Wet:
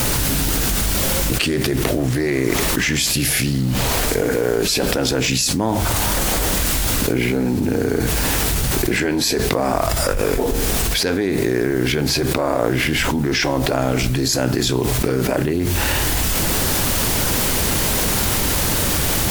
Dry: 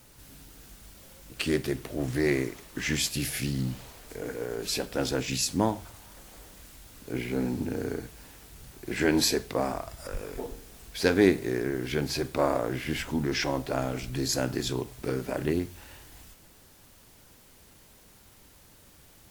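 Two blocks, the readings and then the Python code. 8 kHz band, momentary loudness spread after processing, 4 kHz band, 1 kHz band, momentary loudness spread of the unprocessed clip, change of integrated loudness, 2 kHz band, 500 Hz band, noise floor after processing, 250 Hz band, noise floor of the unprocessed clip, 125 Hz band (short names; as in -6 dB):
+16.0 dB, 2 LU, +14.0 dB, +12.5 dB, 22 LU, +11.0 dB, +13.0 dB, +10.0 dB, -20 dBFS, +10.0 dB, -56 dBFS, +14.0 dB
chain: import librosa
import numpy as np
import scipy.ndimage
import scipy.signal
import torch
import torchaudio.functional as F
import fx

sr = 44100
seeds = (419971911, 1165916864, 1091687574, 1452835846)

y = fx.env_flatten(x, sr, amount_pct=100)
y = y * librosa.db_to_amplitude(-1.5)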